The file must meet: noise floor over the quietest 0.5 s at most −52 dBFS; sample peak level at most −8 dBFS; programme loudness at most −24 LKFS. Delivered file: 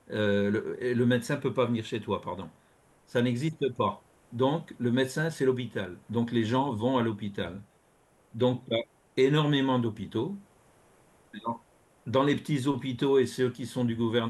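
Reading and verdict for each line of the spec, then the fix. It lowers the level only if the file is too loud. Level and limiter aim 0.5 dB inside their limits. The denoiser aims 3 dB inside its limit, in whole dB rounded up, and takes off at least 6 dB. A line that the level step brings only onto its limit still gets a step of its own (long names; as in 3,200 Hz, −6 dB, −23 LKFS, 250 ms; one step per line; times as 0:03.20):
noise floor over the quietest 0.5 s −64 dBFS: in spec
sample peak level −13.0 dBFS: in spec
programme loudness −29.0 LKFS: in spec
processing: no processing needed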